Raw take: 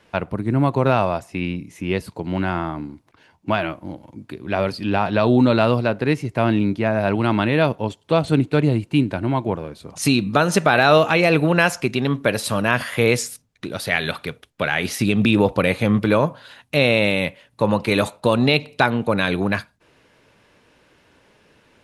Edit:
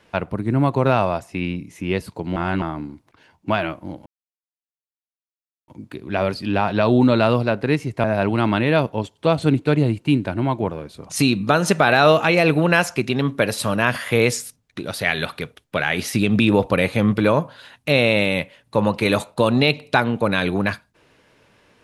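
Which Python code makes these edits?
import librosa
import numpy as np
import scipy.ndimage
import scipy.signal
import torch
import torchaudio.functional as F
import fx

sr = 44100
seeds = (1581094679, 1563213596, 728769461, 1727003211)

y = fx.edit(x, sr, fx.reverse_span(start_s=2.36, length_s=0.26),
    fx.insert_silence(at_s=4.06, length_s=1.62),
    fx.cut(start_s=6.42, length_s=0.48), tone=tone)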